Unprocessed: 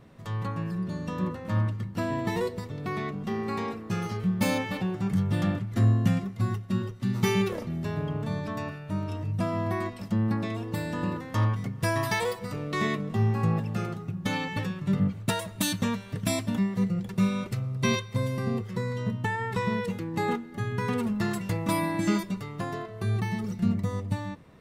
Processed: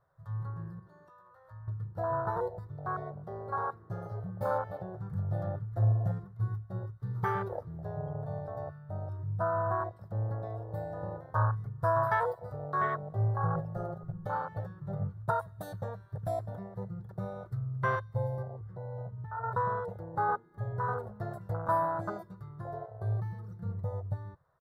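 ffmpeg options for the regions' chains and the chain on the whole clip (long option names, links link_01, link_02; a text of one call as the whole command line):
ffmpeg -i in.wav -filter_complex "[0:a]asettb=1/sr,asplit=3[link_01][link_02][link_03];[link_01]atrim=end=0.794[link_04];[link_02]atrim=start=0.79:end=1.68,asetpts=PTS-STARTPTS,afade=type=in:duration=0.004:curve=qsin,afade=type=out:start_time=0.886:duration=0.004:curve=qsin,equalizer=frequency=160:width=0.66:gain=-12,acompressor=threshold=-39dB:ratio=10:attack=3.2:release=140:knee=1:detection=peak,asplit=2[link_05][link_06];[link_06]adelay=17,volume=-7dB[link_07];[link_05][link_07]amix=inputs=2:normalize=0,atrim=end_sample=39249[link_08];[link_03]atrim=start=1.676[link_09];[link_04][link_08]acrossfade=duration=0.004:curve1=hsin:curve2=qsin[link_10];[link_10][link_09]acrossfade=duration=0.004:curve1=qsin:curve2=hsin,asettb=1/sr,asplit=3[link_11][link_12][link_13];[link_11]atrim=end=13.554[link_14];[link_12]atrim=start=13.55:end=14.25,asetpts=PTS-STARTPTS,afade=type=in:duration=0.004:curve=qsin,afade=type=out:start_time=0.696:duration=0.004:curve=qsin,asubboost=boost=10:cutoff=110,aecho=1:1:5.5:0.96,atrim=end_sample=30870[link_15];[link_13]atrim=start=14.246[link_16];[link_14][link_15]acrossfade=duration=0.004:curve1=hsin:curve2=qsin[link_17];[link_17][link_16]acrossfade=duration=0.004:curve1=qsin:curve2=hsin,asettb=1/sr,asplit=3[link_18][link_19][link_20];[link_18]atrim=end=18.424[link_21];[link_19]atrim=start=18.42:end=19.44,asetpts=PTS-STARTPTS,afade=type=in:duration=0.004:curve=qsin,afade=type=out:start_time=1.016:duration=0.004:curve=qsin,lowpass=frequency=2600:poles=1,acompressor=threshold=-31dB:ratio=5:attack=3.2:release=140:knee=1:detection=peak[link_22];[link_20]atrim=start=19.436[link_23];[link_21][link_22]acrossfade=duration=0.004:curve1=hsin:curve2=qsin[link_24];[link_24][link_23]acrossfade=duration=0.004:curve1=qsin:curve2=hsin,afwtdn=0.0355,firequalizer=gain_entry='entry(140,0);entry(230,-25);entry(350,-8);entry(570,6);entry(1500,10);entry(2500,-20);entry(3800,-5);entry(6900,-10);entry(12000,1)':delay=0.05:min_phase=1,volume=-4dB" out.wav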